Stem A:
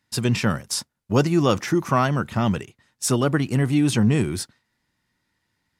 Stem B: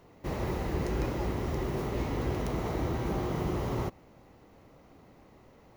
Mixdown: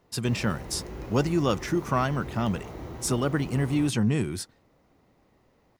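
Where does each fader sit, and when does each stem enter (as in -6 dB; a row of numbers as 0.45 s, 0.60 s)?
-5.5 dB, -7.5 dB; 0.00 s, 0.00 s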